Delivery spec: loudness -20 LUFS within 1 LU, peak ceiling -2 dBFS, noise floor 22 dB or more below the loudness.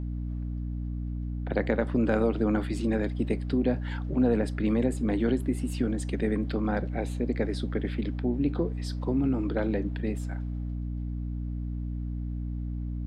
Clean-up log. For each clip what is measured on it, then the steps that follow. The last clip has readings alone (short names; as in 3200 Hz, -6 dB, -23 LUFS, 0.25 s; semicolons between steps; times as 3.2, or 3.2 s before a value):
hum 60 Hz; harmonics up to 300 Hz; hum level -30 dBFS; loudness -29.5 LUFS; peak -11.0 dBFS; loudness target -20.0 LUFS
-> notches 60/120/180/240/300 Hz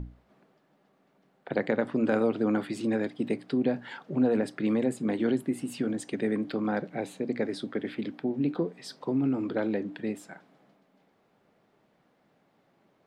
hum none; loudness -30.0 LUFS; peak -12.5 dBFS; loudness target -20.0 LUFS
-> gain +10 dB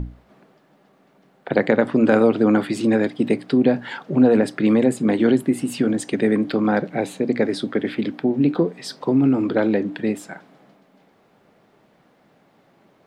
loudness -20.0 LUFS; peak -2.5 dBFS; noise floor -58 dBFS